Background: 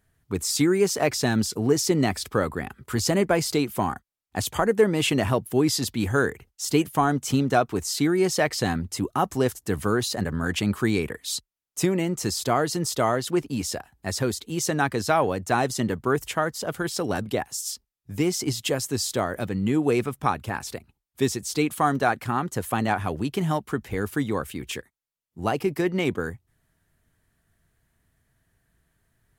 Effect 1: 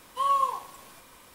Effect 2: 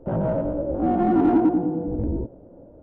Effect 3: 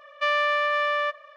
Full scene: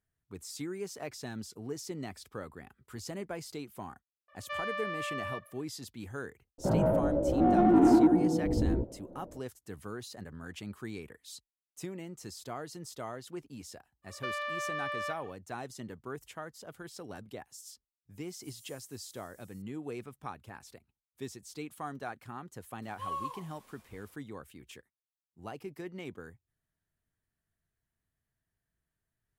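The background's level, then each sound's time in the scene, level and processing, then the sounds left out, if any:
background −18 dB
0:04.28: mix in 3 −13 dB + high-shelf EQ 5,600 Hz −6 dB
0:06.58: mix in 2 −3 dB
0:14.02: mix in 3 −6 dB, fades 0.10 s + downward compressor 5 to 1, threshold −26 dBFS
0:18.28: mix in 1 −6 dB + inverse Chebyshev high-pass filter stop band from 1,400 Hz, stop band 70 dB
0:22.82: mix in 1 −13 dB

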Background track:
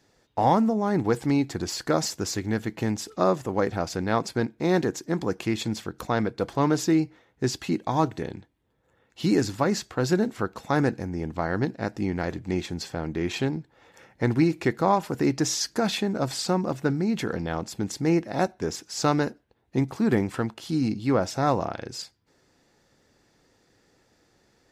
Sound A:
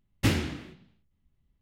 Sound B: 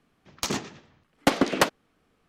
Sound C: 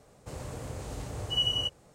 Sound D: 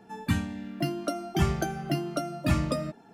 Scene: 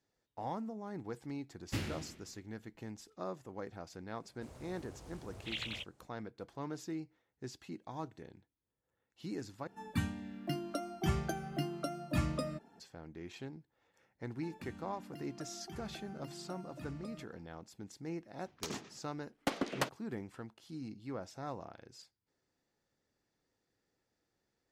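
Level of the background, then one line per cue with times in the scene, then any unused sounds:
background track −19.5 dB
0:01.49: mix in A −13 dB + feedback echo with a swinging delay time 92 ms, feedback 48%, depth 180 cents, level −10 dB
0:04.15: mix in C −13.5 dB + highs frequency-modulated by the lows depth 0.93 ms
0:09.67: overwrite with D −8 dB + pitch vibrato 2.7 Hz 14 cents
0:14.33: mix in D −13.5 dB + downward compressor 3 to 1, threshold −34 dBFS
0:18.20: mix in B −13.5 dB

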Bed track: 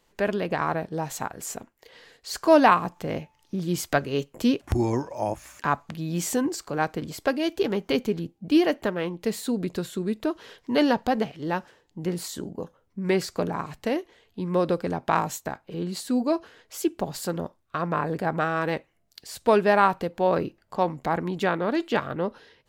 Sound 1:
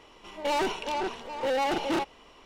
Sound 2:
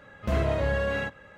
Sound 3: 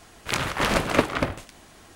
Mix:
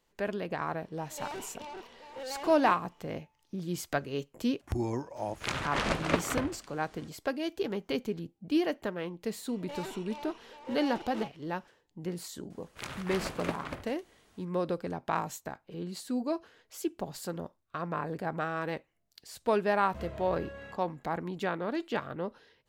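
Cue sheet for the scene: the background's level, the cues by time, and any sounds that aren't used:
bed track −8 dB
0:00.73: mix in 1 −13.5 dB
0:05.15: mix in 3 −7.5 dB, fades 0.02 s + low-pass filter 7,400 Hz
0:09.24: mix in 1 −14.5 dB
0:12.50: mix in 3 −15 dB
0:19.67: mix in 2 −17.5 dB

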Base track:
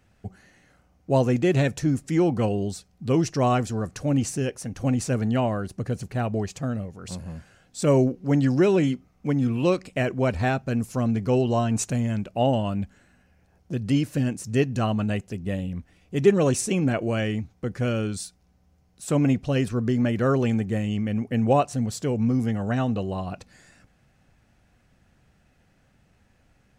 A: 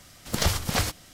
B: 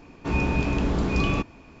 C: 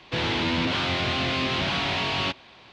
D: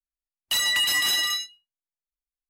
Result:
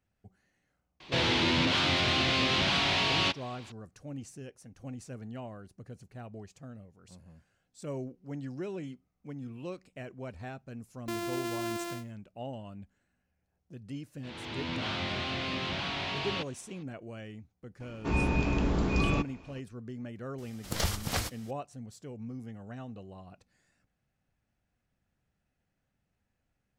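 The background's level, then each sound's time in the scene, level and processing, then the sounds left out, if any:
base track −18.5 dB
0:01.00: mix in C −3 dB + high-shelf EQ 4,700 Hz +9 dB
0:10.57: mix in D −12 dB + samples sorted by size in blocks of 128 samples
0:14.11: mix in C −8.5 dB + fade in at the beginning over 0.78 s
0:17.80: mix in B −4 dB
0:20.38: mix in A −6.5 dB

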